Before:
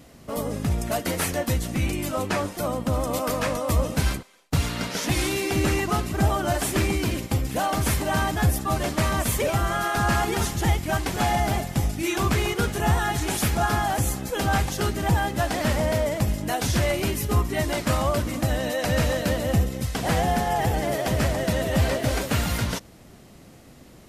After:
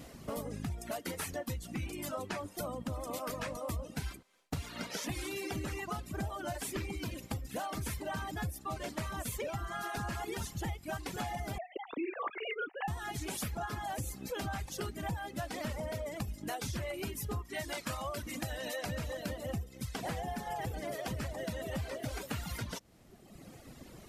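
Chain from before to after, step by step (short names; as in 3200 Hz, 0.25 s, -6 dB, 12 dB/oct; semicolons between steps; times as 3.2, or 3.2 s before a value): 11.58–12.88 sine-wave speech; reverb removal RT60 1.3 s; 17.45–18.79 tilt shelf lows -3.5 dB, about 750 Hz; compressor 5:1, threshold -37 dBFS, peak gain reduction 19 dB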